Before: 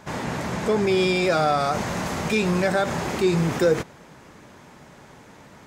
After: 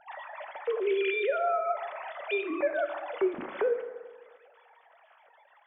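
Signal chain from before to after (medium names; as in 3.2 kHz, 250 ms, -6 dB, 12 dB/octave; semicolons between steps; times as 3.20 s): formants replaced by sine waves; compression 3:1, threshold -25 dBFS, peak gain reduction 11.5 dB; reverberation RT60 1.5 s, pre-delay 5 ms, DRR 7.5 dB; trim -2.5 dB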